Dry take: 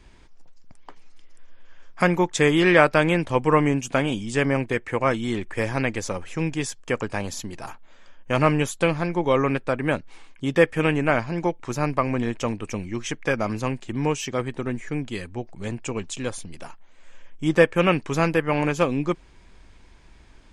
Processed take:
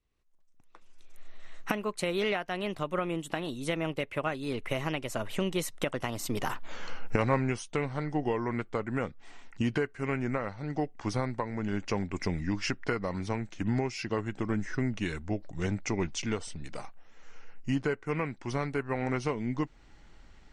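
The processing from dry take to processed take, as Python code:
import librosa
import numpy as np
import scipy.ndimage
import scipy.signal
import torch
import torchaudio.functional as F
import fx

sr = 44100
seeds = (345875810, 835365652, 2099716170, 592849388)

y = fx.doppler_pass(x, sr, speed_mps=53, closest_m=8.3, pass_at_s=6.69)
y = fx.recorder_agc(y, sr, target_db=-24.0, rise_db_per_s=24.0, max_gain_db=30)
y = fx.dynamic_eq(y, sr, hz=7600.0, q=1.7, threshold_db=-59.0, ratio=4.0, max_db=-4)
y = y * librosa.db_to_amplitude(3.5)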